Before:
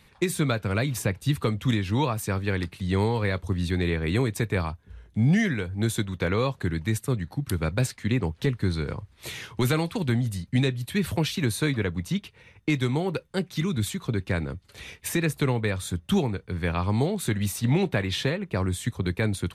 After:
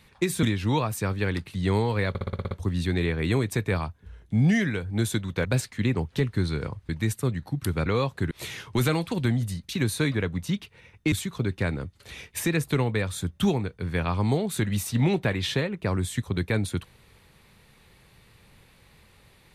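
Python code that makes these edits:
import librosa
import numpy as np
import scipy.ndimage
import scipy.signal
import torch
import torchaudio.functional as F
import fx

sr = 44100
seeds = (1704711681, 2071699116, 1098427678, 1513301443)

y = fx.edit(x, sr, fx.cut(start_s=0.43, length_s=1.26),
    fx.stutter(start_s=3.35, slice_s=0.06, count=8),
    fx.swap(start_s=6.29, length_s=0.45, other_s=7.71, other_length_s=1.44),
    fx.cut(start_s=10.53, length_s=0.78),
    fx.cut(start_s=12.74, length_s=1.07), tone=tone)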